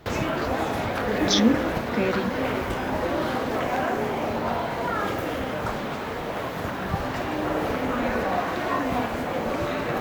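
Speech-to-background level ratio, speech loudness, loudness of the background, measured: 1.5 dB, −25.5 LKFS, −27.0 LKFS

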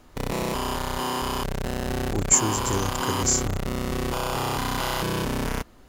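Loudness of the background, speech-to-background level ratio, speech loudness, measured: −28.0 LKFS, 4.0 dB, −24.0 LKFS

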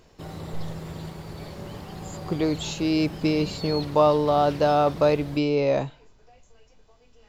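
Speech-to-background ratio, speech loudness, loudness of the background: 14.0 dB, −23.0 LKFS, −37.0 LKFS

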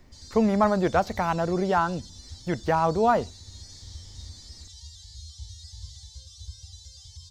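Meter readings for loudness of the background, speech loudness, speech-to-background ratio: −43.5 LKFS, −24.5 LKFS, 19.0 dB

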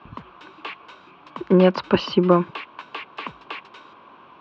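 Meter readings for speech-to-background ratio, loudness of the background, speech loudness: 18.5 dB, −37.5 LKFS, −19.0 LKFS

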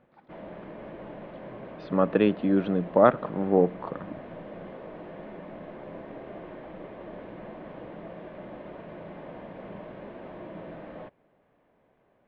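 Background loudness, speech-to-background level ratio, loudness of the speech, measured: −42.5 LKFS, 18.5 dB, −24.0 LKFS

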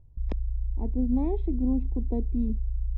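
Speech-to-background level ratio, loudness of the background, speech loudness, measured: 2.5 dB, −33.5 LKFS, −31.0 LKFS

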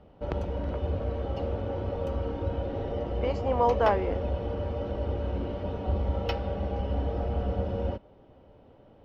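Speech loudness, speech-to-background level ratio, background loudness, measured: −29.5 LKFS, 2.5 dB, −32.0 LKFS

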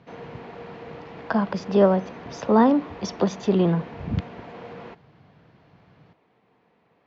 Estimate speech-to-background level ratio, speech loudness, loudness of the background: 18.0 dB, −22.5 LKFS, −40.5 LKFS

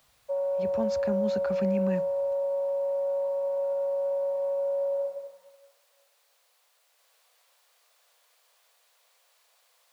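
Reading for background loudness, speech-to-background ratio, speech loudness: −29.0 LKFS, −3.5 dB, −32.5 LKFS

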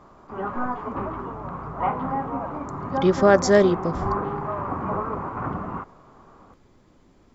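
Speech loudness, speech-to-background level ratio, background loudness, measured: −20.0 LKFS, 9.5 dB, −29.5 LKFS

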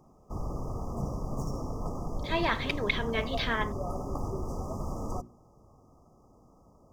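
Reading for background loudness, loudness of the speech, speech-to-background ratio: −37.0 LKFS, −31.5 LKFS, 5.5 dB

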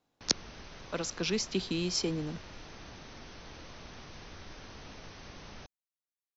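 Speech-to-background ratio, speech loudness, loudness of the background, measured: 15.5 dB, −33.0 LKFS, −48.5 LKFS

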